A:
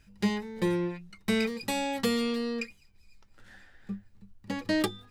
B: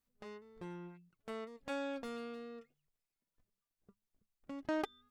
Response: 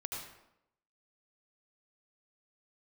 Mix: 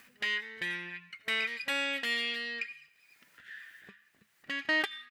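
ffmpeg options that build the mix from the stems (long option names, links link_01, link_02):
-filter_complex "[0:a]highpass=frequency=1300:width=0.5412,highpass=frequency=1300:width=1.3066,equalizer=frequency=3000:width=1.8:gain=11.5,alimiter=limit=-22dB:level=0:latency=1:release=104,volume=-8.5dB,asplit=2[link_01][link_02];[link_02]volume=-11dB[link_03];[1:a]acompressor=mode=upward:threshold=-44dB:ratio=2.5,adelay=0.7,volume=-1dB[link_04];[2:a]atrim=start_sample=2205[link_05];[link_03][link_05]afir=irnorm=-1:irlink=0[link_06];[link_01][link_04][link_06]amix=inputs=3:normalize=0,highpass=140,equalizer=frequency=1800:width_type=o:width=0.85:gain=14"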